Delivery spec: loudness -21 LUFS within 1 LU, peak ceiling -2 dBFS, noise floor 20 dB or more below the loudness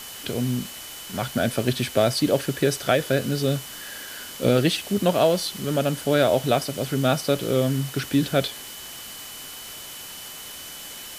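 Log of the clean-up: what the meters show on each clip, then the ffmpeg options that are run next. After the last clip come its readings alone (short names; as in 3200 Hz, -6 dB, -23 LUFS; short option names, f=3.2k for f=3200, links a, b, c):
steady tone 3000 Hz; tone level -43 dBFS; noise floor -39 dBFS; noise floor target -44 dBFS; loudness -23.5 LUFS; peak -5.0 dBFS; loudness target -21.0 LUFS
-> -af "bandreject=f=3k:w=30"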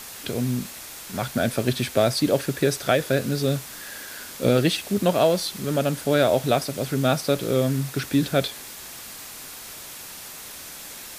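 steady tone none; noise floor -39 dBFS; noise floor target -44 dBFS
-> -af "afftdn=nr=6:nf=-39"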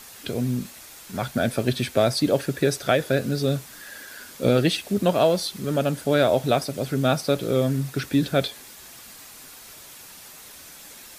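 noise floor -45 dBFS; loudness -23.5 LUFS; peak -5.0 dBFS; loudness target -21.0 LUFS
-> -af "volume=2.5dB"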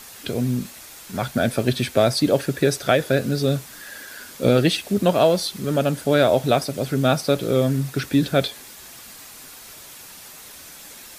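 loudness -21.0 LUFS; peak -2.5 dBFS; noise floor -42 dBFS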